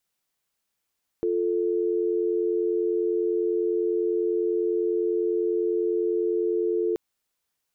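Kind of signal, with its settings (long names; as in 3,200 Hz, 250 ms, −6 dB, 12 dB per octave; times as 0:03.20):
call progress tone dial tone, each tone −24.5 dBFS 5.73 s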